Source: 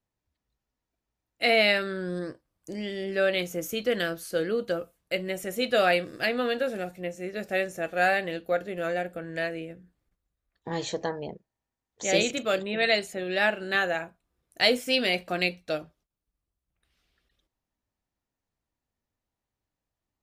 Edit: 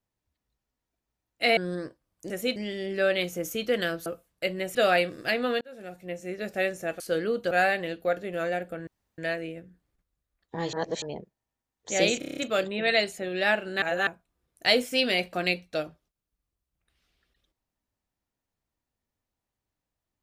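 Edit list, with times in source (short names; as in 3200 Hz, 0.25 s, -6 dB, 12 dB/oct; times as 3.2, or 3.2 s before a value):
1.57–2.01 cut
4.24–4.75 move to 7.95
5.44–5.7 move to 2.74
6.56–7.2 fade in
9.31 insert room tone 0.31 s
10.86–11.15 reverse
12.32 stutter 0.03 s, 7 plays
13.77–14.02 reverse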